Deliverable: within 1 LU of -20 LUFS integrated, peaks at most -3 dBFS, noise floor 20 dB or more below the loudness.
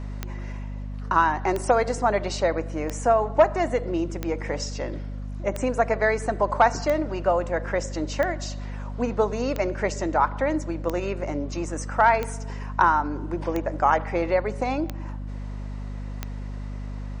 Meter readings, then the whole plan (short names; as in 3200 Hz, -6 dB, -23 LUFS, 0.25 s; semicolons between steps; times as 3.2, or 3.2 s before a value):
clicks 13; hum 50 Hz; harmonics up to 250 Hz; hum level -30 dBFS; loudness -25.0 LUFS; peak -5.5 dBFS; loudness target -20.0 LUFS
-> de-click; notches 50/100/150/200/250 Hz; gain +5 dB; limiter -3 dBFS